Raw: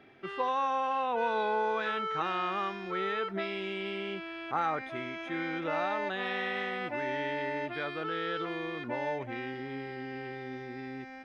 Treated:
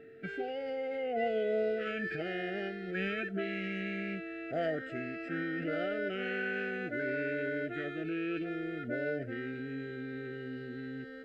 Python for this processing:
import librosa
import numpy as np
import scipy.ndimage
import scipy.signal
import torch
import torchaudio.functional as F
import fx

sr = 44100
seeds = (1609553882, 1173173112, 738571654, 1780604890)

y = fx.formant_shift(x, sr, semitones=-4)
y = scipy.signal.sosfilt(scipy.signal.ellip(3, 1.0, 50, [690.0, 1400.0], 'bandstop', fs=sr, output='sos'), y)
y = y + 10.0 ** (-51.0 / 20.0) * np.sin(2.0 * np.pi * 450.0 * np.arange(len(y)) / sr)